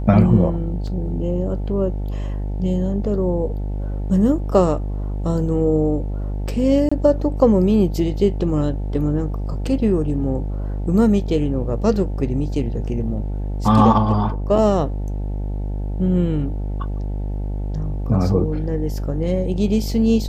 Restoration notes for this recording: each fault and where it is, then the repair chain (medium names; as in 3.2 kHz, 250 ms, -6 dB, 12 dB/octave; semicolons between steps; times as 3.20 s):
buzz 50 Hz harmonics 18 -24 dBFS
0.87 s: dropout 4.1 ms
6.89–6.92 s: dropout 25 ms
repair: de-hum 50 Hz, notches 18; interpolate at 0.87 s, 4.1 ms; interpolate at 6.89 s, 25 ms